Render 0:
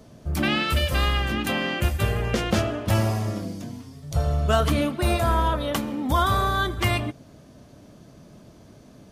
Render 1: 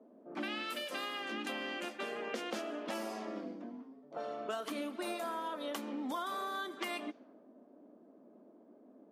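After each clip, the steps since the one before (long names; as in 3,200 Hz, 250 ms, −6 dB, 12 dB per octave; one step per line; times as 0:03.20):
Butterworth high-pass 230 Hz 48 dB per octave
low-pass that shuts in the quiet parts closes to 620 Hz, open at −22.5 dBFS
downward compressor 5 to 1, threshold −30 dBFS, peak gain reduction 12.5 dB
level −6.5 dB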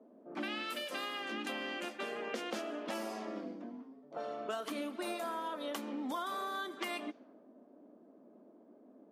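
no processing that can be heard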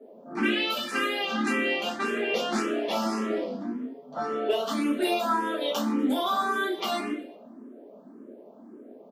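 repeating echo 121 ms, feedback 47%, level −21.5 dB
rectangular room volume 34 cubic metres, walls mixed, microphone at 1.2 metres
frequency shifter mixed with the dry sound +1.8 Hz
level +7 dB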